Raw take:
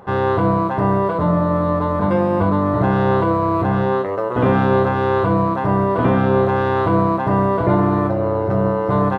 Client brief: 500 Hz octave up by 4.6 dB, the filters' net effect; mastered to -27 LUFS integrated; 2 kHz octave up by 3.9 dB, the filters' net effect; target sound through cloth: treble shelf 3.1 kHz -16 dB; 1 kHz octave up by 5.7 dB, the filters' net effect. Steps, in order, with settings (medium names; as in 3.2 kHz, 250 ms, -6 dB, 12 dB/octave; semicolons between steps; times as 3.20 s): peaking EQ 500 Hz +4.5 dB; peaking EQ 1 kHz +5.5 dB; peaking EQ 2 kHz +7.5 dB; treble shelf 3.1 kHz -16 dB; trim -13 dB